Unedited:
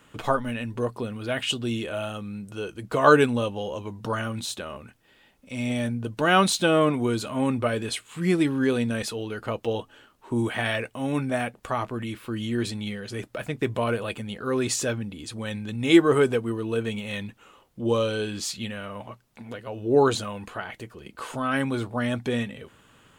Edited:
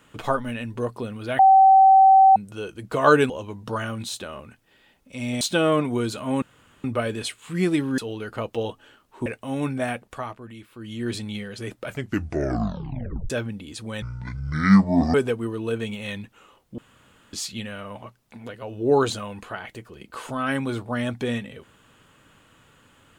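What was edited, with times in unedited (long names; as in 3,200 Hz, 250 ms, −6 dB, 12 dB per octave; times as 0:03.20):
0:01.39–0:02.36: beep over 770 Hz −9.5 dBFS
0:03.30–0:03.67: remove
0:05.78–0:06.50: remove
0:07.51: splice in room tone 0.42 s
0:08.65–0:09.08: remove
0:10.36–0:10.78: remove
0:11.51–0:12.68: duck −9.5 dB, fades 0.38 s
0:13.36: tape stop 1.46 s
0:15.54–0:16.19: play speed 58%
0:17.83–0:18.38: fill with room tone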